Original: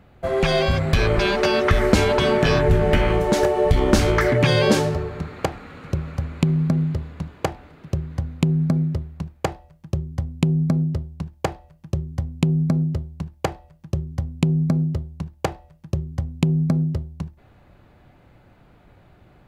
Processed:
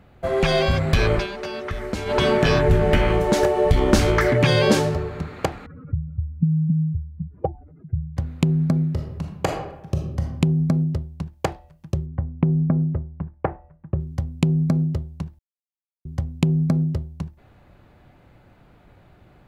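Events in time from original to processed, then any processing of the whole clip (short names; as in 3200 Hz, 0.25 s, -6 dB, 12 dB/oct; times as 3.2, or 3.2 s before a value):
1.14–2.18 dip -11.5 dB, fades 0.13 s
5.66–8.17 spectral contrast raised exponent 2.8
8.9–10.37 reverb throw, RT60 0.89 s, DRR 2 dB
12.06–14 LPF 1800 Hz 24 dB/oct
15.39–16.05 mute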